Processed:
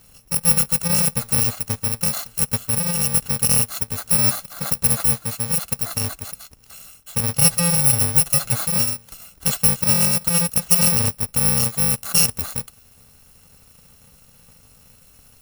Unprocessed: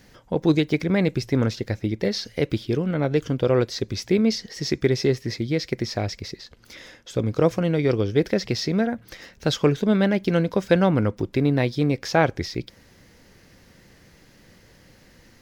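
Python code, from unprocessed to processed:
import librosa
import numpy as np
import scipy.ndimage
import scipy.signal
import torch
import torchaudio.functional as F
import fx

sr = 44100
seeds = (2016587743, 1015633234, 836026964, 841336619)

y = fx.bit_reversed(x, sr, seeds[0], block=128)
y = fx.comb(y, sr, ms=7.3, depth=0.73, at=(7.37, 8.63))
y = y * 10.0 ** (2.0 / 20.0)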